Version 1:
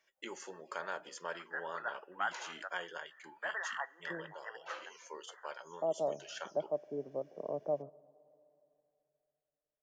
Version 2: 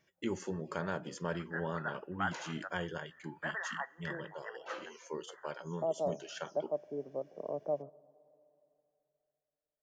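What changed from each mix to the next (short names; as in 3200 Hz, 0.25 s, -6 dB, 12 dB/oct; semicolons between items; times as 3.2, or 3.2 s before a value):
background: remove HPF 650 Hz 12 dB/oct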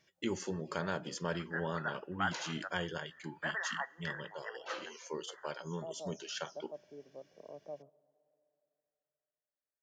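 second voice -11.5 dB; master: add bell 4400 Hz +7.5 dB 1.4 oct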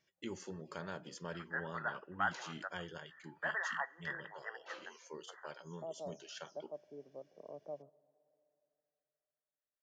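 background -8.0 dB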